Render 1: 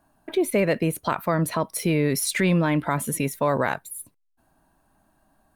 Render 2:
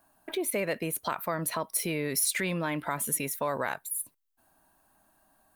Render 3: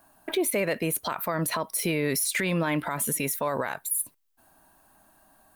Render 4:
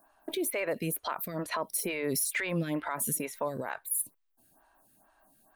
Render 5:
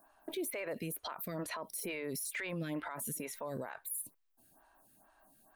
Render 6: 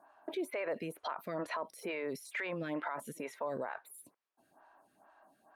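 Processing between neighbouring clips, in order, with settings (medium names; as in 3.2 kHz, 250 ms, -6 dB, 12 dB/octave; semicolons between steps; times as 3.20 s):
bass shelf 370 Hz -9.5 dB; compression 1.5:1, threshold -36 dBFS, peak gain reduction 6 dB; treble shelf 11 kHz +10.5 dB
peak limiter -24 dBFS, peak gain reduction 8.5 dB; trim +6.5 dB
lamp-driven phase shifter 2.2 Hz; trim -2.5 dB
peak limiter -30 dBFS, peak gain reduction 10.5 dB; trim -1 dB
band-pass filter 860 Hz, Q 0.56; trim +5 dB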